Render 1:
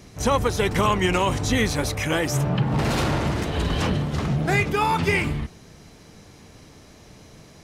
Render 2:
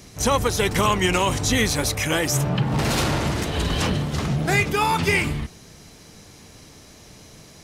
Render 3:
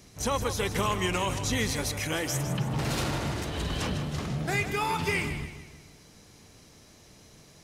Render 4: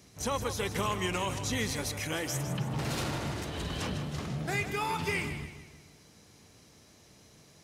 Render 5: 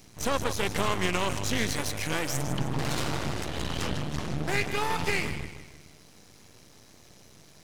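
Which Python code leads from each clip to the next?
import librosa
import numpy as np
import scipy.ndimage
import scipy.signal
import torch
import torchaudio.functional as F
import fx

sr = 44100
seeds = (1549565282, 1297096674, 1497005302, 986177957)

y1 = fx.high_shelf(x, sr, hz=3500.0, db=8.0)
y2 = fx.echo_feedback(y1, sr, ms=156, feedback_pct=44, wet_db=-10.5)
y2 = y2 * 10.0 ** (-8.5 / 20.0)
y3 = scipy.signal.sosfilt(scipy.signal.butter(2, 59.0, 'highpass', fs=sr, output='sos'), y2)
y3 = y3 * 10.0 ** (-3.5 / 20.0)
y4 = np.maximum(y3, 0.0)
y4 = fx.doppler_dist(y4, sr, depth_ms=0.17)
y4 = y4 * 10.0 ** (7.5 / 20.0)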